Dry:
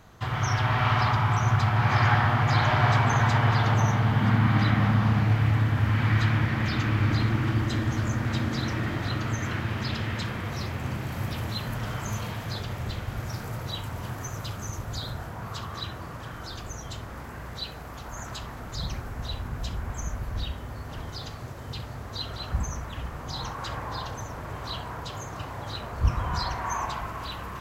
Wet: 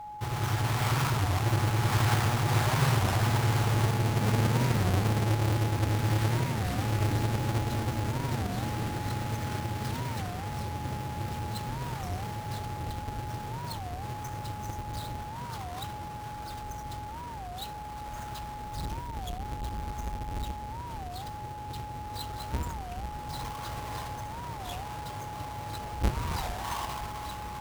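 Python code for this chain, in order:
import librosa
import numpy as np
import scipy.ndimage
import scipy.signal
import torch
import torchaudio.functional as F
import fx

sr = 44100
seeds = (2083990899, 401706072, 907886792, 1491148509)

y = fx.halfwave_hold(x, sr)
y = y + 10.0 ** (-30.0 / 20.0) * np.sin(2.0 * np.pi * 840.0 * np.arange(len(y)) / sr)
y = fx.record_warp(y, sr, rpm=33.33, depth_cents=250.0)
y = F.gain(torch.from_numpy(y), -9.0).numpy()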